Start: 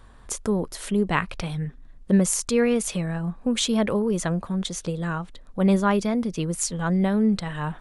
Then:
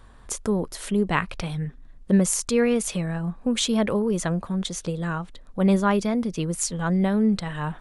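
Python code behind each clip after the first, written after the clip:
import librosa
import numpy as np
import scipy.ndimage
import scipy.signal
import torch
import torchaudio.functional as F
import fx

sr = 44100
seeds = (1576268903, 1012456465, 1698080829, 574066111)

y = x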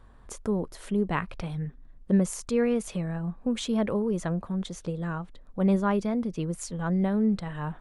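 y = fx.high_shelf(x, sr, hz=2100.0, db=-9.0)
y = y * 10.0 ** (-3.5 / 20.0)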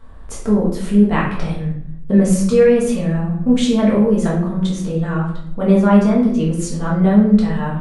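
y = fx.room_shoebox(x, sr, seeds[0], volume_m3=150.0, walls='mixed', distance_m=1.6)
y = y * 10.0 ** (4.5 / 20.0)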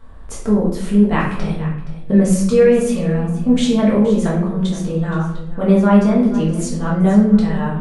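y = x + 10.0 ** (-15.0 / 20.0) * np.pad(x, (int(471 * sr / 1000.0), 0))[:len(x)]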